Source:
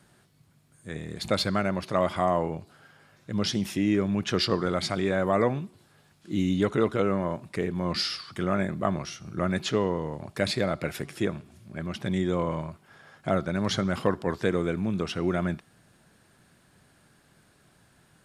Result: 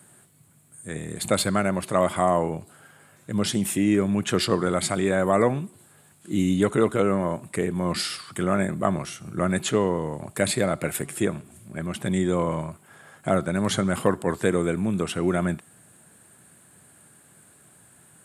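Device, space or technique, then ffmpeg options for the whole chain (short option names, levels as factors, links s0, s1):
budget condenser microphone: -af "highpass=86,highshelf=f=6700:t=q:w=3:g=7.5,volume=1.5"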